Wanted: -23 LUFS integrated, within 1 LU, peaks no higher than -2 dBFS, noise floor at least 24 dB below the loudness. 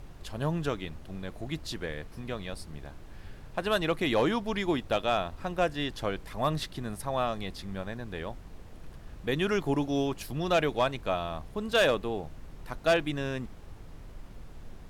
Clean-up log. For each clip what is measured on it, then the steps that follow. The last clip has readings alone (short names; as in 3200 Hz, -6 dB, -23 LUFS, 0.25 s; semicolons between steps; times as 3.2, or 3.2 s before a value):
noise floor -47 dBFS; noise floor target -55 dBFS; loudness -31.0 LUFS; peak -16.0 dBFS; loudness target -23.0 LUFS
-> noise print and reduce 8 dB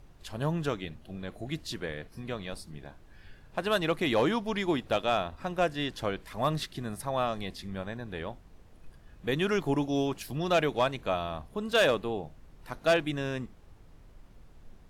noise floor -55 dBFS; loudness -31.0 LUFS; peak -17.0 dBFS; loudness target -23.0 LUFS
-> gain +8 dB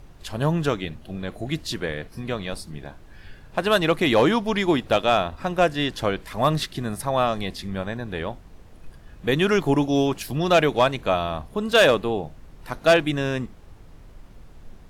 loudness -23.0 LUFS; peak -9.0 dBFS; noise floor -47 dBFS